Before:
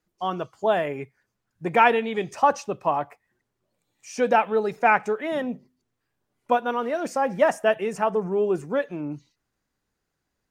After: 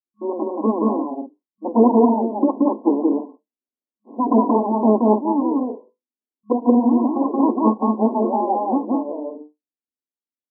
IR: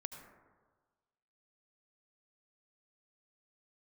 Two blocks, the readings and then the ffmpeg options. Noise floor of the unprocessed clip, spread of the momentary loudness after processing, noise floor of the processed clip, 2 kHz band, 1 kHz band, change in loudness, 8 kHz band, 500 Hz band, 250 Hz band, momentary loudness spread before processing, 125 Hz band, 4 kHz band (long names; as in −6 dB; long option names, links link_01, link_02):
−80 dBFS, 13 LU, below −85 dBFS, below −40 dB, +1.0 dB, +5.0 dB, below −35 dB, +2.5 dB, +15.0 dB, 14 LU, can't be measured, below −40 dB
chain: -filter_complex "[0:a]bandreject=frequency=50:width_type=h:width=6,bandreject=frequency=100:width_type=h:width=6,bandreject=frequency=150:width_type=h:width=6,bandreject=frequency=200:width_type=h:width=6,bandreject=frequency=250:width_type=h:width=6,bandreject=frequency=300:width_type=h:width=6,bandreject=frequency=350:width_type=h:width=6,aeval=exprs='abs(val(0))':channel_layout=same,agate=range=-33dB:threshold=-42dB:ratio=3:detection=peak,equalizer=frequency=270:width_type=o:width=1.4:gain=14,afftfilt=real='re*between(b*sr/4096,210,1100)':imag='im*between(b*sr/4096,210,1100)':win_size=4096:overlap=0.75,asplit=2[link_01][link_02];[link_02]aecho=0:1:177.8|224.5:0.891|0.398[link_03];[link_01][link_03]amix=inputs=2:normalize=0,volume=4dB"